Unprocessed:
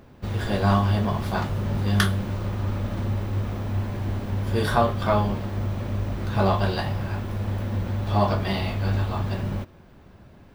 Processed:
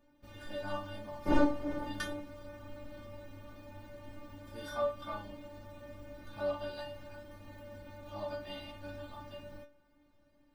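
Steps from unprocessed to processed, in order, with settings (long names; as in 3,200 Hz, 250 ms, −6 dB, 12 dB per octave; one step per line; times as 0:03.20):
0:01.25–0:02.19: wind on the microphone 440 Hz −17 dBFS
stiff-string resonator 290 Hz, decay 0.26 s, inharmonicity 0.002
level −2.5 dB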